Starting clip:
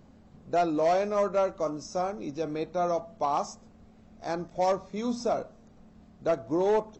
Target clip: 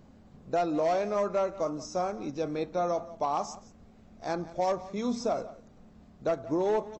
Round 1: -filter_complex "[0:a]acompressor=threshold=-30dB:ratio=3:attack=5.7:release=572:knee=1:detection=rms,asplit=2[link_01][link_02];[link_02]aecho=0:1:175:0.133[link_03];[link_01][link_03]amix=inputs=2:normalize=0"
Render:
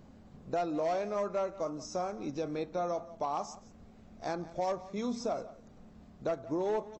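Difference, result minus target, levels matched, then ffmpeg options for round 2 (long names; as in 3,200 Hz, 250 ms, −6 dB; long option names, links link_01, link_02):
downward compressor: peak gain reduction +4.5 dB
-filter_complex "[0:a]acompressor=threshold=-23dB:ratio=3:attack=5.7:release=572:knee=1:detection=rms,asplit=2[link_01][link_02];[link_02]aecho=0:1:175:0.133[link_03];[link_01][link_03]amix=inputs=2:normalize=0"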